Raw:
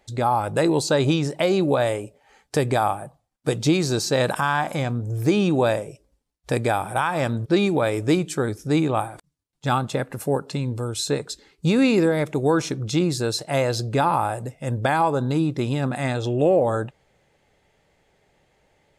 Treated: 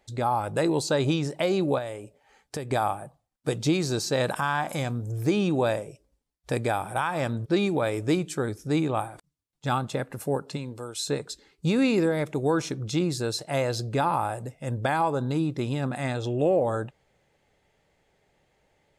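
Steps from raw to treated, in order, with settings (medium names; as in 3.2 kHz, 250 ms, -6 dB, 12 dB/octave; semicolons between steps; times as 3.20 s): 1.78–2.71 s: compression 2.5:1, threshold -30 dBFS, peak gain reduction 9.5 dB; 4.69–5.12 s: treble shelf 5.5 kHz +9.5 dB; 10.56–11.06 s: high-pass 220 Hz -> 670 Hz 6 dB/octave; trim -4.5 dB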